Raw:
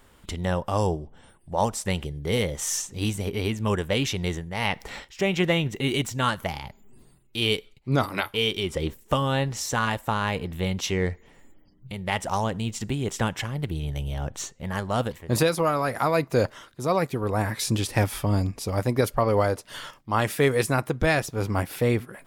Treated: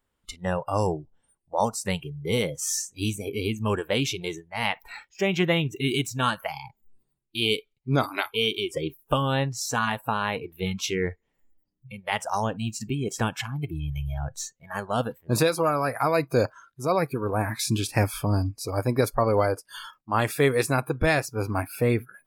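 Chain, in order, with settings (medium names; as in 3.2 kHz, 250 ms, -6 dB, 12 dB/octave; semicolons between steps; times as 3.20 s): spectral noise reduction 22 dB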